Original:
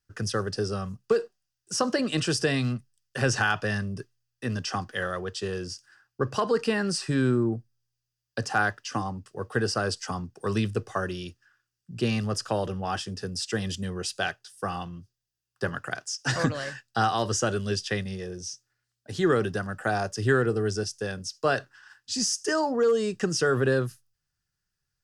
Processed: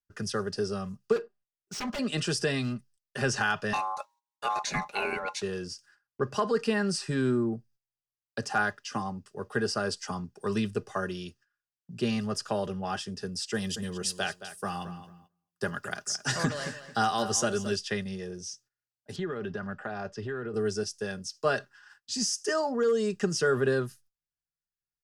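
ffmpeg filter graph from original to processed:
-filter_complex "[0:a]asettb=1/sr,asplit=3[a][b][c];[a]atrim=end=1.164[d];[b]atrim=start=1.16:end=1.99,asetpts=PTS-STARTPTS,afade=t=in:d=0.004:c=qsin,afade=t=out:st=0.826:d=0.004:c=qsin,bandreject=f=500:w=8.8,aeval=exprs='0.0501*(abs(mod(val(0)/0.0501+3,4)-2)-1)':c=same,adynamicsmooth=sensitivity=8:basefreq=2.2k[e];[c]atrim=start=1.986[f];[d][e]acrossfade=d=0.004:c1=hsin:c2=qsin[g];[g][f]acrossfade=d=0.004:c1=qsin:c2=hsin,asettb=1/sr,asplit=3[h][i][j];[h]atrim=end=3.734[k];[i]atrim=start=3.73:end=5.42,asetpts=PTS-STARTPTS,afade=t=in:d=0.004:c=qsin,afade=t=out:st=1.686:d=0.004:c=qsin,acontrast=28,aeval=exprs='val(0)*sin(2*PI*950*n/s)':c=same[l];[j]atrim=start=5.416[m];[k][l]acrossfade=d=0.004:c1=hsin:c2=qsin[n];[n][m]acrossfade=d=0.004:c1=qsin:c2=hsin,asettb=1/sr,asplit=3[o][p][q];[o]atrim=end=13.544[r];[p]atrim=start=13.54:end=17.76,asetpts=PTS-STARTPTS,afade=t=in:d=0.004:c=qsin,afade=t=out:st=4.216:d=0.004:c=qsin,highshelf=f=7.5k:g=10.5,asplit=2[s][t];[t]adelay=221,lowpass=f=4.9k:p=1,volume=-12dB,asplit=2[u][v];[v]adelay=221,lowpass=f=4.9k:p=1,volume=0.22,asplit=2[w][x];[x]adelay=221,lowpass=f=4.9k:p=1,volume=0.22[y];[s][u][w][y]amix=inputs=4:normalize=0,atrim=end_sample=186102[z];[q]atrim=start=17.756[aa];[r][z]acrossfade=d=0.004:c1=hsin:c2=qsin[ab];[ab][aa]acrossfade=d=0.004:c1=qsin:c2=hsin,asettb=1/sr,asplit=3[ac][ad][ae];[ac]atrim=end=19.164[af];[ad]atrim=start=19.16:end=20.54,asetpts=PTS-STARTPTS,afade=t=in:d=0.004:c=qsin,afade=t=out:st=1.376:d=0.004:c=qsin,lowpass=3.3k,acompressor=threshold=-27dB:ratio=10:attack=3.2:release=140:knee=1:detection=peak[ag];[ae]atrim=start=20.536[ah];[af][ag]acrossfade=d=0.004:c1=hsin:c2=qsin[ai];[ai][ah]acrossfade=d=0.004:c1=qsin:c2=hsin,aecho=1:1:4.9:0.44,agate=range=-15dB:threshold=-54dB:ratio=16:detection=peak,volume=-3.5dB"

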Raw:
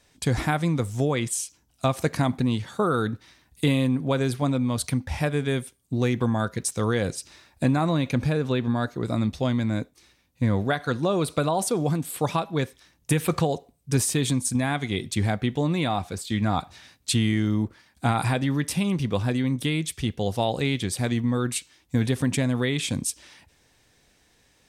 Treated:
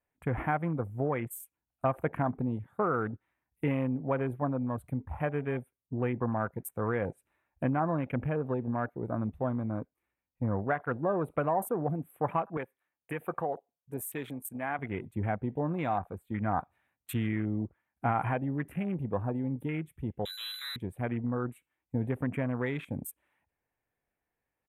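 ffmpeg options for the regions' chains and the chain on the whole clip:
-filter_complex "[0:a]asettb=1/sr,asplit=3[a][b][c];[a]atrim=end=12.574[d];[b]atrim=start=12.57:end=14.79,asetpts=PTS-STARTPTS,afade=t=in:d=0.004:c=qsin,afade=t=out:st=2.216:d=0.004:c=qsin,highpass=f=480:p=1,bandreject=f=1k:w=30[e];[c]atrim=start=14.786[f];[d][e]acrossfade=d=0.004:c1=hsin:c2=qsin[g];[g][f]acrossfade=d=0.004:c1=qsin:c2=hsin,asettb=1/sr,asplit=3[h][i][j];[h]atrim=end=20.254[k];[i]atrim=start=20.25:end=20.76,asetpts=PTS-STARTPTS,afade=t=in:d=0.004:c=qsin,afade=t=out:st=0.506:d=0.004:c=qsin,aeval=exprs='if(lt(val(0),0),0.251*val(0),val(0))':c=same,aemphasis=mode=reproduction:type=riaa,lowpass=f=3.4k:t=q:w=0.5098,lowpass=f=3.4k:t=q:w=0.6013,lowpass=f=3.4k:t=q:w=0.9,lowpass=f=3.4k:t=q:w=2.563,afreqshift=-4000[l];[j]atrim=start=20.756[m];[k][l]acrossfade=d=0.004:c1=hsin:c2=qsin[n];[n][m]acrossfade=d=0.004:c1=qsin:c2=hsin,afwtdn=0.02,firequalizer=gain_entry='entry(220,0);entry(740,6);entry(2400,0);entry(4900,-29);entry(8200,-10);entry(12000,5)':delay=0.05:min_phase=1,volume=-8.5dB"

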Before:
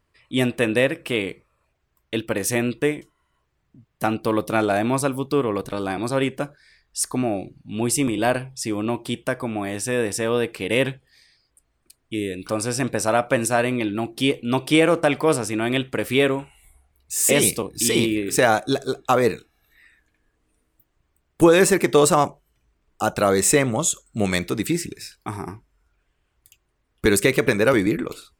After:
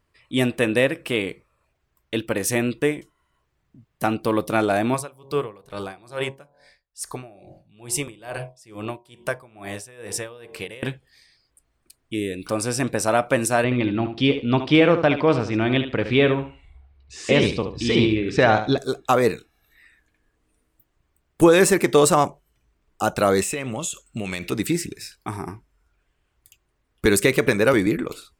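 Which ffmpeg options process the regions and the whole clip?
-filter_complex "[0:a]asettb=1/sr,asplit=3[a][b][c];[a]atrim=end=4.944[d];[b]atrim=start=4.94:end=10.83,asetpts=PTS-STARTPTS,afade=t=in:d=0.004:c=qsin,afade=t=out:st=5.886:d=0.004:c=qsin,equalizer=f=260:t=o:w=0.42:g=-13,bandreject=f=45.39:t=h:w=4,bandreject=f=90.78:t=h:w=4,bandreject=f=136.17:t=h:w=4,bandreject=f=181.56:t=h:w=4,bandreject=f=226.95:t=h:w=4,bandreject=f=272.34:t=h:w=4,bandreject=f=317.73:t=h:w=4,bandreject=f=363.12:t=h:w=4,bandreject=f=408.51:t=h:w=4,bandreject=f=453.9:t=h:w=4,bandreject=f=499.29:t=h:w=4,bandreject=f=544.68:t=h:w=4,bandreject=f=590.07:t=h:w=4,bandreject=f=635.46:t=h:w=4,bandreject=f=680.85:t=h:w=4,bandreject=f=726.24:t=h:w=4,bandreject=f=771.63:t=h:w=4,bandreject=f=817.02:t=h:w=4,bandreject=f=862.41:t=h:w=4,bandreject=f=907.8:t=h:w=4,bandreject=f=953.19:t=h:w=4,bandreject=f=998.58:t=h:w=4,bandreject=f=1.04397k:t=h:w=4,bandreject=f=1.08936k:t=h:w=4,aeval=exprs='val(0)*pow(10,-22*(0.5-0.5*cos(2*PI*2.3*n/s))/20)':c=same[e];[c]atrim=start=10.826[f];[d][e]acrossfade=d=0.004:c1=hsin:c2=qsin[g];[g][f]acrossfade=d=0.004:c1=qsin:c2=hsin,asettb=1/sr,asplit=3[h][i][j];[h]atrim=end=13.644[k];[i]atrim=start=13.64:end=18.78,asetpts=PTS-STARTPTS,afade=t=in:d=0.004:c=qsin,afade=t=out:st=5.136:d=0.004:c=qsin,lowpass=f=4.6k:w=0.5412,lowpass=f=4.6k:w=1.3066,equalizer=f=72:t=o:w=2:g=8,aecho=1:1:73|146|219:0.316|0.0632|0.0126,atrim=end_sample=226674[l];[j]atrim=start=18.776[m];[k][l]acrossfade=d=0.004:c1=hsin:c2=qsin[n];[n][m]acrossfade=d=0.004:c1=qsin:c2=hsin,asettb=1/sr,asplit=3[o][p][q];[o]atrim=end=23.414[r];[p]atrim=start=23.41:end=24.52,asetpts=PTS-STARTPTS,afade=t=in:d=0.004:c=qsin,afade=t=out:st=1.106:d=0.004:c=qsin,equalizer=f=2.7k:w=3.9:g=12,acompressor=threshold=-23dB:ratio=12:attack=3.2:release=140:knee=1:detection=peak[s];[q]atrim=start=24.516[t];[r][s]acrossfade=d=0.004:c1=hsin:c2=qsin[u];[u][t]acrossfade=d=0.004:c1=qsin:c2=hsin"

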